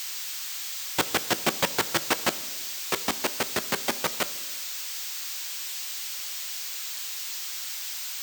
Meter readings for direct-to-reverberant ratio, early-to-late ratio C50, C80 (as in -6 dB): 11.5 dB, 18.0 dB, 20.0 dB